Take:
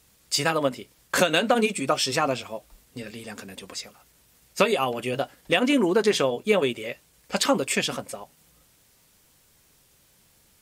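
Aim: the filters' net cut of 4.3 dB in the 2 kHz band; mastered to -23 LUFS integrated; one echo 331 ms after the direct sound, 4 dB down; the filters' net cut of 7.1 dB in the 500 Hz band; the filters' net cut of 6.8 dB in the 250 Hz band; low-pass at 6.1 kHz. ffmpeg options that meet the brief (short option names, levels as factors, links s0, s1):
-af "lowpass=6100,equalizer=f=250:t=o:g=-6.5,equalizer=f=500:t=o:g=-6.5,equalizer=f=2000:t=o:g=-5.5,aecho=1:1:331:0.631,volume=1.78"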